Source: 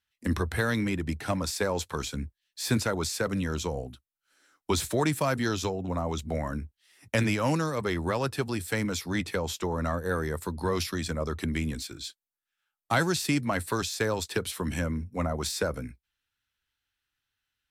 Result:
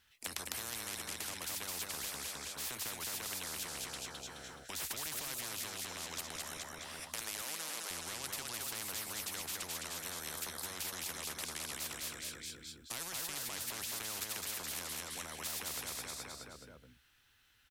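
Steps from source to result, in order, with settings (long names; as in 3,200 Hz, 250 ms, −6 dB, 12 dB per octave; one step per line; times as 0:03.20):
0:06.36–0:07.91: high-pass filter 590 Hz 24 dB per octave
brickwall limiter −21 dBFS, peak gain reduction 7.5 dB
repeating echo 212 ms, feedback 42%, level −7 dB
every bin compressed towards the loudest bin 10 to 1
level +3 dB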